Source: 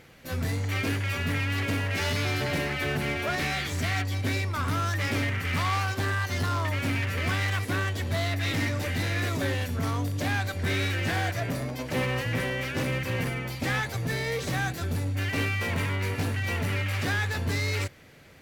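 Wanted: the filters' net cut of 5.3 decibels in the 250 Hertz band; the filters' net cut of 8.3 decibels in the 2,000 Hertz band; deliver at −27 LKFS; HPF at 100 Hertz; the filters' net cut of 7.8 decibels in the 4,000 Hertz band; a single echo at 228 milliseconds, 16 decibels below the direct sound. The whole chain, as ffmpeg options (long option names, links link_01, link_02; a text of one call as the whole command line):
ffmpeg -i in.wav -af "highpass=100,equalizer=frequency=250:width_type=o:gain=-6.5,equalizer=frequency=2000:width_type=o:gain=-8.5,equalizer=frequency=4000:width_type=o:gain=-7,aecho=1:1:228:0.158,volume=6dB" out.wav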